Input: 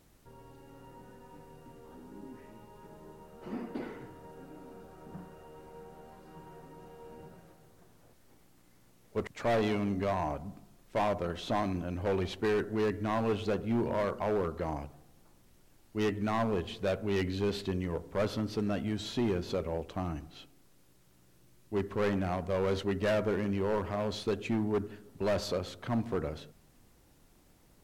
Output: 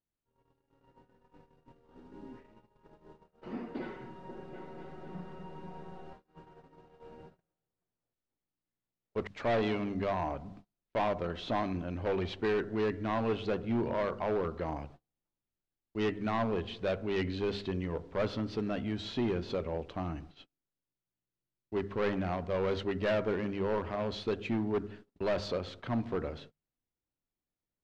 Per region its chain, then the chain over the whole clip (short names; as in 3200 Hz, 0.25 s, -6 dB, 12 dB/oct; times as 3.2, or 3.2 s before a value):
1.06–3.17 low shelf 60 Hz +3 dB + mismatched tape noise reduction decoder only
3.8–6.13 comb 5.4 ms, depth 68% + repeats that get brighter 0.244 s, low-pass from 200 Hz, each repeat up 2 oct, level -3 dB
whole clip: Chebyshev low-pass 3800 Hz, order 2; notches 50/100/150/200 Hz; gate -50 dBFS, range -30 dB